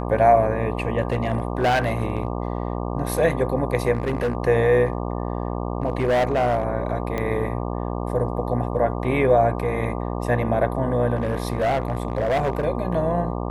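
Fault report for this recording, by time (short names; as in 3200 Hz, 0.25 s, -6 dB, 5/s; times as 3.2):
buzz 60 Hz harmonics 20 -27 dBFS
1.02–2.32 clipped -15.5 dBFS
3.93–4.35 clipped -18.5 dBFS
4.85–6.65 clipped -16 dBFS
7.18 pop -14 dBFS
11.15–12.66 clipped -17.5 dBFS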